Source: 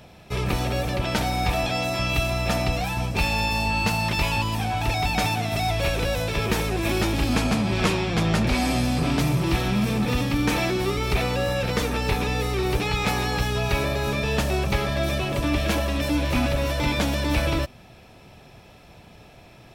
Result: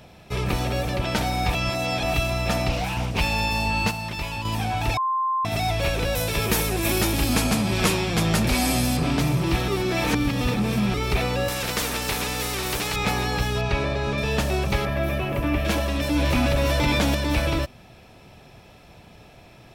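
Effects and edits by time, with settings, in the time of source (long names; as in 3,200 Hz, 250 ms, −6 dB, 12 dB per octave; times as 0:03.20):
0:01.55–0:02.14: reverse
0:02.69–0:03.21: highs frequency-modulated by the lows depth 0.42 ms
0:03.91–0:04.45: clip gain −6.5 dB
0:04.97–0:05.45: beep over 1,050 Hz −20.5 dBFS
0:06.15–0:08.97: parametric band 13,000 Hz +12.5 dB 1.4 octaves
0:09.68–0:10.94: reverse
0:11.48–0:12.96: every bin compressed towards the loudest bin 2 to 1
0:13.61–0:14.18: high-frequency loss of the air 84 metres
0:14.85–0:15.65: flat-topped bell 5,700 Hz −10.5 dB
0:16.16–0:17.15: envelope flattener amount 70%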